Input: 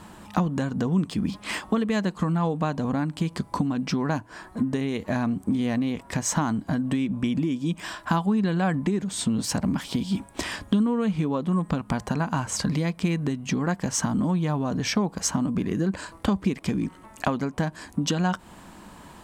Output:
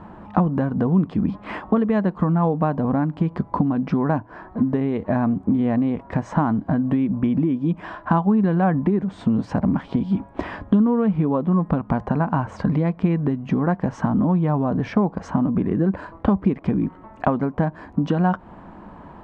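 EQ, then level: LPF 1300 Hz 12 dB/oct; bell 700 Hz +2 dB; +5.0 dB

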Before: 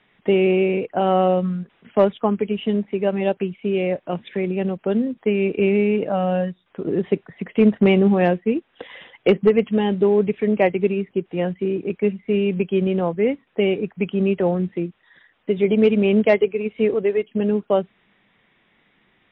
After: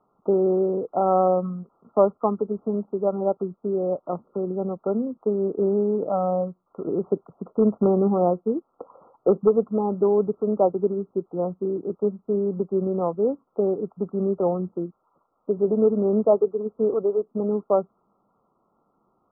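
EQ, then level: brick-wall FIR low-pass 1400 Hz; air absorption 360 m; low shelf 290 Hz -11.5 dB; +2.0 dB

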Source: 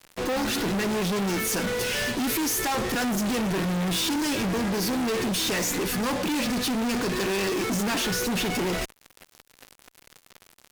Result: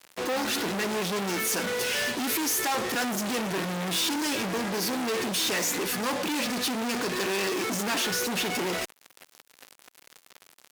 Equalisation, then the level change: HPF 350 Hz 6 dB/oct; 0.0 dB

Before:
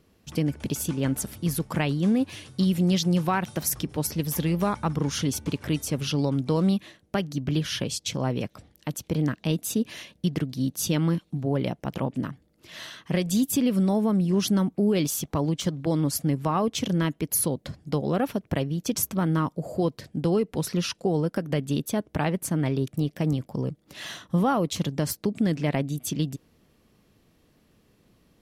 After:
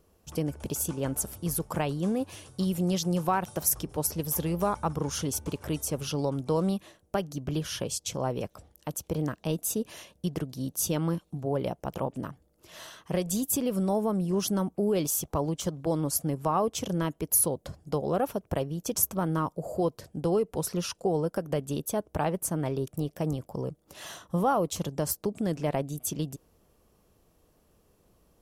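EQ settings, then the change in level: graphic EQ 125/250/2000/4000 Hz -7/-9/-10/-8 dB; +2.5 dB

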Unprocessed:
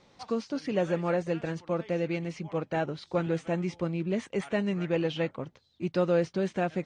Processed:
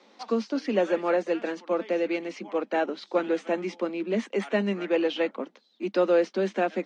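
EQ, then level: steep high-pass 200 Hz 96 dB/oct; air absorption 110 m; high shelf 5100 Hz +6.5 dB; +4.5 dB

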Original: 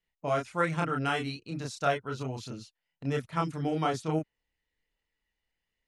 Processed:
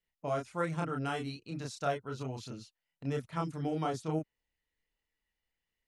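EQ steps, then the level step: dynamic EQ 2200 Hz, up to -6 dB, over -42 dBFS, Q 0.72; -3.5 dB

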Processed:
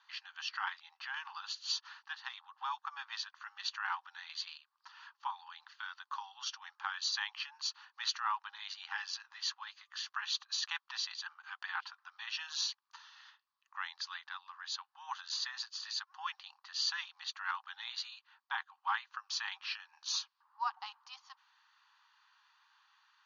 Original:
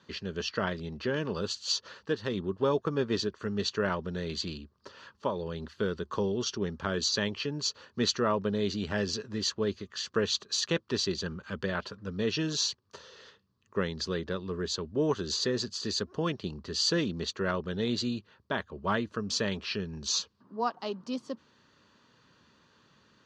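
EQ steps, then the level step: brick-wall FIR band-pass 750–7100 Hz; air absorption 92 m; -2.0 dB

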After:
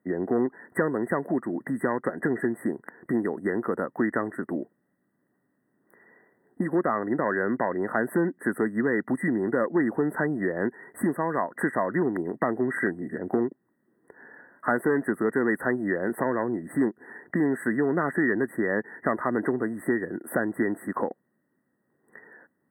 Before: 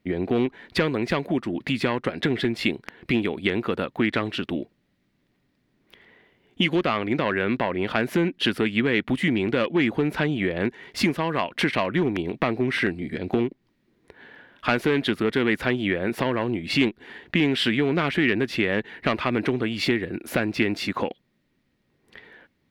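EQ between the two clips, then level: HPF 190 Hz 12 dB/oct; brick-wall FIR band-stop 2000–7800 Hz; -1.0 dB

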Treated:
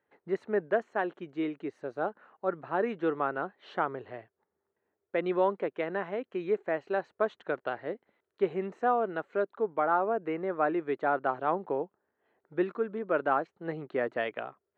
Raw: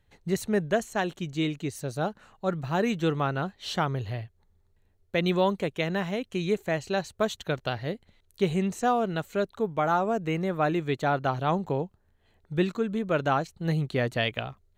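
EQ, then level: Chebyshev band-pass 340–1600 Hz, order 2; -1.0 dB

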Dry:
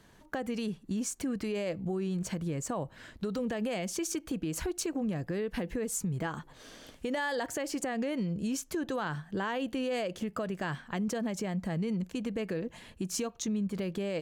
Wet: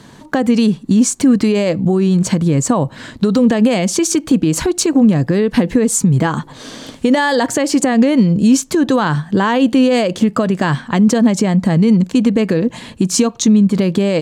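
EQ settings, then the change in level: graphic EQ 125/250/500/1000/2000/4000/8000 Hz +11/+12/+5/+9/+4/+9/+9 dB; +8.0 dB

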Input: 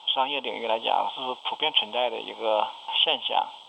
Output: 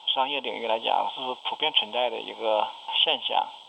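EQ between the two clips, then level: notch 1200 Hz, Q 7.3; 0.0 dB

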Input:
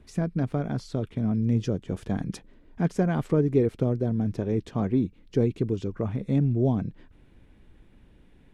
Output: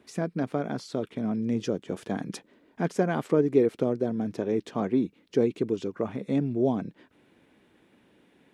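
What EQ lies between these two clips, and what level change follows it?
HPF 260 Hz 12 dB/oct; +2.5 dB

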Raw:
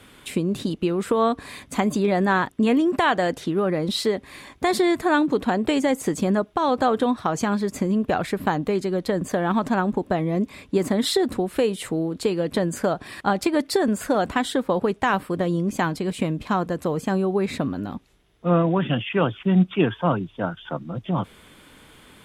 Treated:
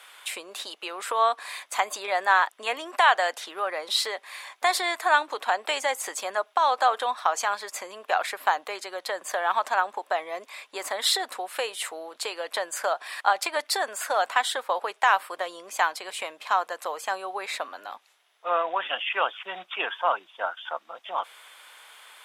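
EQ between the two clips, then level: HPF 700 Hz 24 dB/oct; +2.5 dB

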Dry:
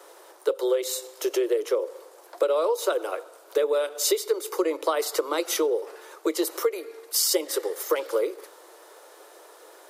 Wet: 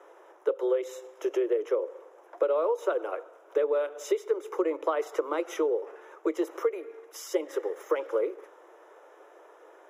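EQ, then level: running mean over 10 samples; -2.5 dB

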